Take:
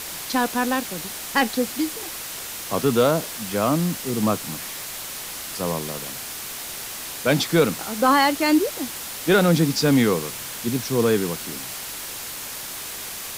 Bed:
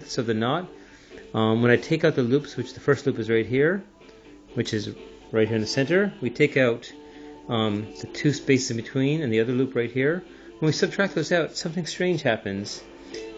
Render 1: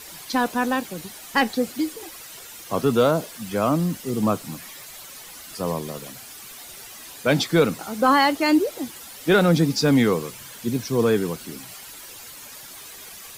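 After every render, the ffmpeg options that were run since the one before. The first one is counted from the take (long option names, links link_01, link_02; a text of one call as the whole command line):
ffmpeg -i in.wav -af "afftdn=noise_reduction=11:noise_floor=-34" out.wav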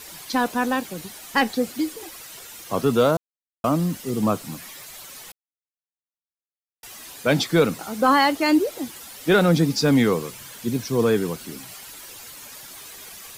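ffmpeg -i in.wav -filter_complex "[0:a]asplit=5[link_01][link_02][link_03][link_04][link_05];[link_01]atrim=end=3.17,asetpts=PTS-STARTPTS,afade=type=out:start_time=3.166:duration=0.004:curve=hsin[link_06];[link_02]atrim=start=3.17:end=3.64,asetpts=PTS-STARTPTS,volume=0[link_07];[link_03]atrim=start=3.64:end=5.32,asetpts=PTS-STARTPTS,afade=type=in:duration=0.004:curve=hsin,afade=type=out:start_time=1.676:duration=0.004:curve=hsin[link_08];[link_04]atrim=start=5.32:end=6.83,asetpts=PTS-STARTPTS,volume=0[link_09];[link_05]atrim=start=6.83,asetpts=PTS-STARTPTS,afade=type=in:duration=0.004:curve=hsin[link_10];[link_06][link_07][link_08][link_09][link_10]concat=n=5:v=0:a=1" out.wav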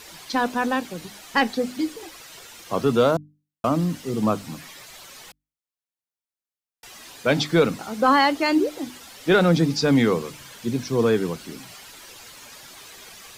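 ffmpeg -i in.wav -filter_complex "[0:a]acrossover=split=7200[link_01][link_02];[link_02]acompressor=threshold=-50dB:ratio=4:attack=1:release=60[link_03];[link_01][link_03]amix=inputs=2:normalize=0,bandreject=frequency=50:width_type=h:width=6,bandreject=frequency=100:width_type=h:width=6,bandreject=frequency=150:width_type=h:width=6,bandreject=frequency=200:width_type=h:width=6,bandreject=frequency=250:width_type=h:width=6,bandreject=frequency=300:width_type=h:width=6" out.wav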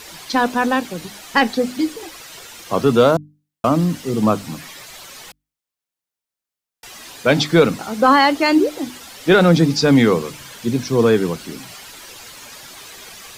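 ffmpeg -i in.wav -af "volume=5.5dB,alimiter=limit=-2dB:level=0:latency=1" out.wav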